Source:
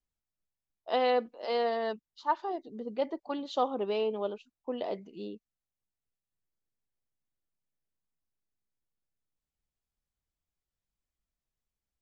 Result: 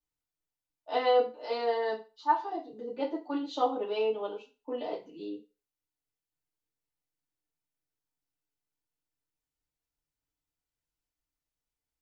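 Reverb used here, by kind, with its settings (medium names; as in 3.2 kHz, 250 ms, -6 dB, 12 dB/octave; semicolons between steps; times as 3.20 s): FDN reverb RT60 0.31 s, low-frequency decay 0.75×, high-frequency decay 0.95×, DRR -6.5 dB; trim -7.5 dB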